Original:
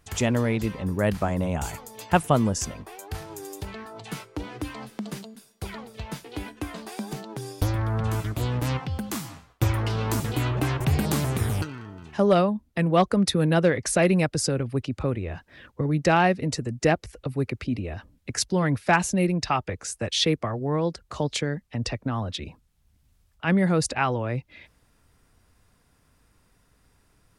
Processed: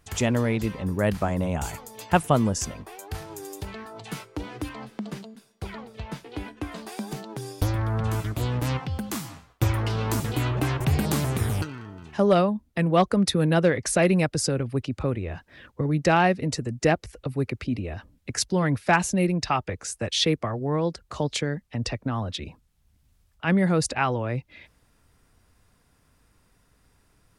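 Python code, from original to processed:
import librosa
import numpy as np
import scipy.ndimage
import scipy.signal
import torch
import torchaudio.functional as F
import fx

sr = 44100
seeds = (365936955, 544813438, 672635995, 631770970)

y = fx.lowpass(x, sr, hz=3700.0, slope=6, at=(4.69, 6.72))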